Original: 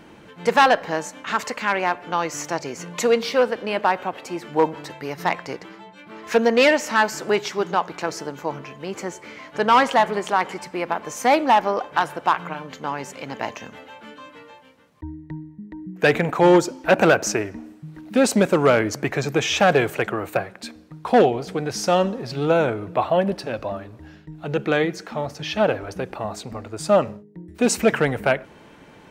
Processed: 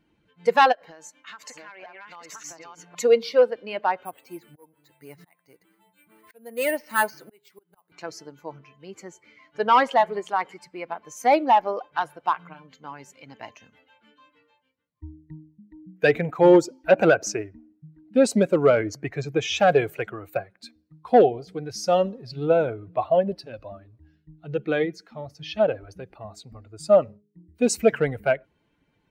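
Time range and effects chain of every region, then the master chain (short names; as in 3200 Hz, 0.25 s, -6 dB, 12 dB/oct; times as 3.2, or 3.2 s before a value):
0.72–2.95 reverse delay 0.572 s, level -0.5 dB + low shelf 250 Hz -7.5 dB + compressor 16:1, threshold -25 dBFS
4.05–7.92 auto swell 0.679 s + careless resampling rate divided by 4×, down filtered, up hold
16.88–19.55 high shelf 12000 Hz -6 dB + mismatched tape noise reduction decoder only
whole clip: per-bin expansion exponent 1.5; dynamic EQ 530 Hz, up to +5 dB, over -32 dBFS, Q 1; gain -2 dB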